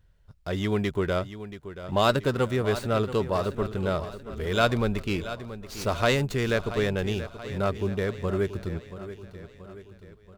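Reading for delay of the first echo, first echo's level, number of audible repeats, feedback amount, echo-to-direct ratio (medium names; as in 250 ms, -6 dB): 680 ms, -13.0 dB, 4, 53%, -11.5 dB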